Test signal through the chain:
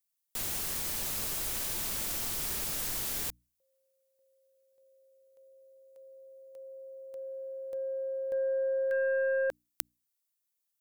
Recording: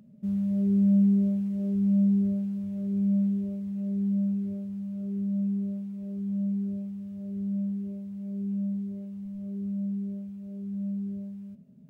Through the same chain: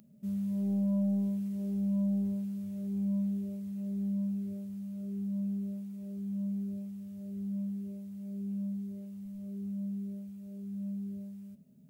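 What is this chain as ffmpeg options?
-af "crystalizer=i=3:c=0,aeval=exprs='0.668*(cos(1*acos(clip(val(0)/0.668,-1,1)))-cos(1*PI/2))+0.237*(cos(3*acos(clip(val(0)/0.668,-1,1)))-cos(3*PI/2))+0.00596*(cos(4*acos(clip(val(0)/0.668,-1,1)))-cos(4*PI/2))+0.00473*(cos(6*acos(clip(val(0)/0.668,-1,1)))-cos(6*PI/2))+0.0531*(cos(7*acos(clip(val(0)/0.668,-1,1)))-cos(7*PI/2))':c=same,bandreject=f=60:t=h:w=6,bandreject=f=120:t=h:w=6,bandreject=f=180:t=h:w=6,bandreject=f=240:t=h:w=6,bandreject=f=300:t=h:w=6,volume=-1dB"

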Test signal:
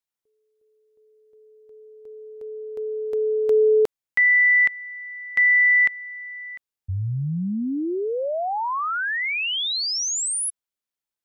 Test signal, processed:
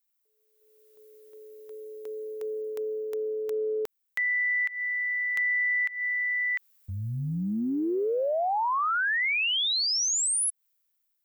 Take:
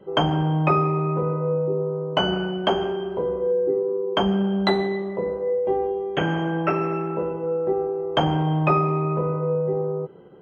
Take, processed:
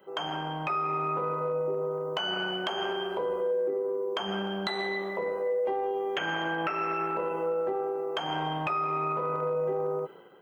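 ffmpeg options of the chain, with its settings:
-af "tremolo=f=110:d=0.261,aemphasis=mode=production:type=riaa,dynaudnorm=f=160:g=9:m=14.5dB,equalizer=f=1.5k:t=o:w=2.6:g=7.5,acompressor=threshold=-16dB:ratio=16:attack=0.86:release=143:knee=6:detection=rms,volume=-7.5dB"

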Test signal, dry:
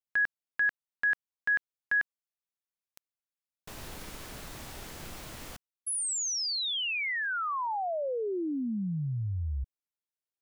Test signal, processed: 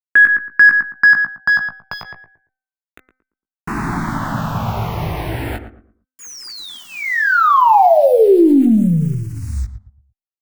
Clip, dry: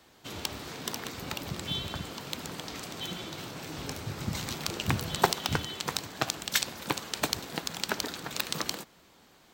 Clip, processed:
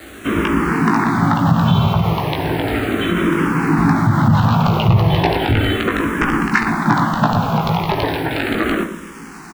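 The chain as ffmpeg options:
-filter_complex "[0:a]highpass=f=110:p=1,aemphasis=mode=reproduction:type=50fm,aeval=exprs='(mod(4.47*val(0)+1,2)-1)/4.47':c=same,lowpass=1.4k,equalizer=f=520:w=1.6:g=-11,acrusher=bits=10:mix=0:aa=0.000001,bandreject=f=257.1:t=h:w=4,bandreject=f=514.2:t=h:w=4,bandreject=f=771.3:t=h:w=4,bandreject=f=1.0284k:t=h:w=4,bandreject=f=1.2855k:t=h:w=4,bandreject=f=1.5426k:t=h:w=4,bandreject=f=1.7997k:t=h:w=4,bandreject=f=2.0568k:t=h:w=4,bandreject=f=2.3139k:t=h:w=4,aeval=exprs='(tanh(20*val(0)+0.05)-tanh(0.05))/20':c=same,asplit=2[a][b];[b]adelay=18,volume=-6dB[c];[a][c]amix=inputs=2:normalize=0,asplit=2[d][e];[e]adelay=114,lowpass=f=1.1k:p=1,volume=-9dB,asplit=2[f][g];[g]adelay=114,lowpass=f=1.1k:p=1,volume=0.31,asplit=2[h][i];[i]adelay=114,lowpass=f=1.1k:p=1,volume=0.31,asplit=2[j][k];[k]adelay=114,lowpass=f=1.1k:p=1,volume=0.31[l];[f][h][j][l]amix=inputs=4:normalize=0[m];[d][m]amix=inputs=2:normalize=0,alimiter=level_in=32.5dB:limit=-1dB:release=50:level=0:latency=1,asplit=2[n][o];[o]afreqshift=-0.35[p];[n][p]amix=inputs=2:normalize=1,volume=-2dB"

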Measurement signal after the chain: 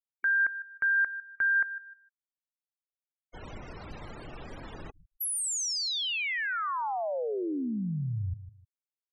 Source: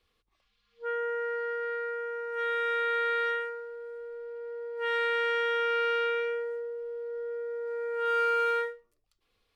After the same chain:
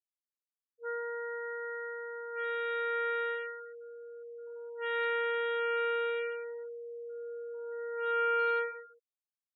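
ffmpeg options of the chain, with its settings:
-af "aecho=1:1:154|308|462:0.224|0.0627|0.0176,afftfilt=real='re*gte(hypot(re,im),0.0158)':imag='im*gte(hypot(re,im),0.0158)':win_size=1024:overlap=0.75,volume=-4.5dB"

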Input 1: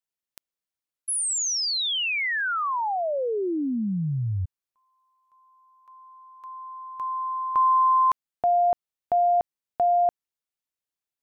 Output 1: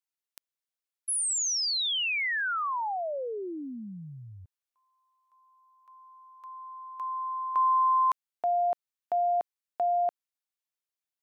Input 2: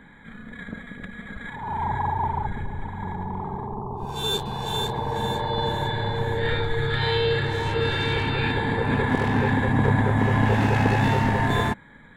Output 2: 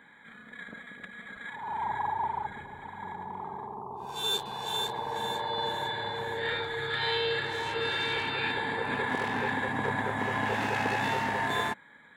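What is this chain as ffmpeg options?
-af "highpass=f=720:p=1,volume=-2.5dB"

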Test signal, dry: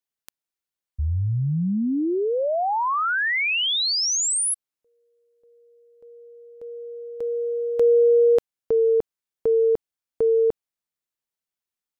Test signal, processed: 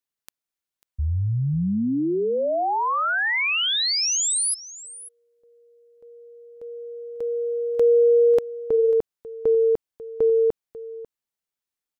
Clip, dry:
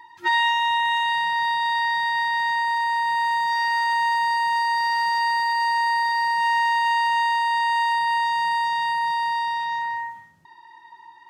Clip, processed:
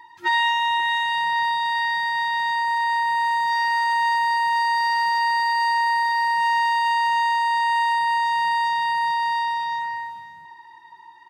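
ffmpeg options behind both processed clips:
-af "aecho=1:1:544:0.141"

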